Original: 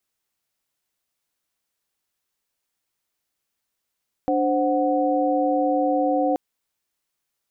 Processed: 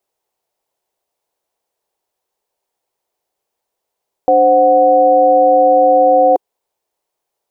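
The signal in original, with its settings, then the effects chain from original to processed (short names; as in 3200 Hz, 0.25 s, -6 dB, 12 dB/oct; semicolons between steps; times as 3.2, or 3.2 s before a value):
chord D4/C5/F#5 sine, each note -22.5 dBFS 2.08 s
band shelf 600 Hz +13 dB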